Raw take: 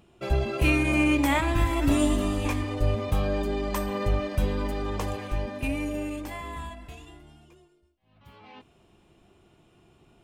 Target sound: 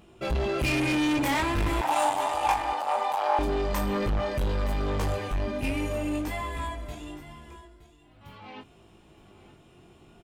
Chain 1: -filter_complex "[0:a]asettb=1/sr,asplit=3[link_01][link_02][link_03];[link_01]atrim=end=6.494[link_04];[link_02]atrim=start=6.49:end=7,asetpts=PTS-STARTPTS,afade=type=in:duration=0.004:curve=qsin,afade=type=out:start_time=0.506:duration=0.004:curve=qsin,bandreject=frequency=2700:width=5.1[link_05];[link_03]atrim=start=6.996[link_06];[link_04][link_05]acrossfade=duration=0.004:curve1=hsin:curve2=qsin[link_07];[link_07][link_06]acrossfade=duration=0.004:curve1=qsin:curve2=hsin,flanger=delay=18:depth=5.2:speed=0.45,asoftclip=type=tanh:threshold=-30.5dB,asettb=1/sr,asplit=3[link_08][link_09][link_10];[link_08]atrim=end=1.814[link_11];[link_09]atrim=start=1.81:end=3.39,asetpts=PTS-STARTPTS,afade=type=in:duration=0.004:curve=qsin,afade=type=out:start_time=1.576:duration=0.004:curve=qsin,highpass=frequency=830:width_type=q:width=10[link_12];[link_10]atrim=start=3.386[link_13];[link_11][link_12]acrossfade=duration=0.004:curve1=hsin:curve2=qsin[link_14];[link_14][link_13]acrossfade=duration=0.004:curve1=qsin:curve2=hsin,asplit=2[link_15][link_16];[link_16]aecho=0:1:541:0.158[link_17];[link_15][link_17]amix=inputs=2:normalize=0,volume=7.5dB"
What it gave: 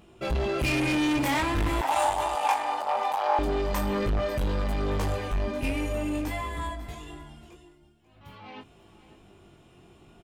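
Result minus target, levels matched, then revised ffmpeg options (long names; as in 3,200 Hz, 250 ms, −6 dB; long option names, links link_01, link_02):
echo 377 ms early
-filter_complex "[0:a]asettb=1/sr,asplit=3[link_01][link_02][link_03];[link_01]atrim=end=6.494[link_04];[link_02]atrim=start=6.49:end=7,asetpts=PTS-STARTPTS,afade=type=in:duration=0.004:curve=qsin,afade=type=out:start_time=0.506:duration=0.004:curve=qsin,bandreject=frequency=2700:width=5.1[link_05];[link_03]atrim=start=6.996[link_06];[link_04][link_05]acrossfade=duration=0.004:curve1=hsin:curve2=qsin[link_07];[link_07][link_06]acrossfade=duration=0.004:curve1=qsin:curve2=hsin,flanger=delay=18:depth=5.2:speed=0.45,asoftclip=type=tanh:threshold=-30.5dB,asettb=1/sr,asplit=3[link_08][link_09][link_10];[link_08]atrim=end=1.814[link_11];[link_09]atrim=start=1.81:end=3.39,asetpts=PTS-STARTPTS,afade=type=in:duration=0.004:curve=qsin,afade=type=out:start_time=1.576:duration=0.004:curve=qsin,highpass=frequency=830:width_type=q:width=10[link_12];[link_10]atrim=start=3.386[link_13];[link_11][link_12]acrossfade=duration=0.004:curve1=hsin:curve2=qsin[link_14];[link_14][link_13]acrossfade=duration=0.004:curve1=qsin:curve2=hsin,asplit=2[link_15][link_16];[link_16]aecho=0:1:918:0.158[link_17];[link_15][link_17]amix=inputs=2:normalize=0,volume=7.5dB"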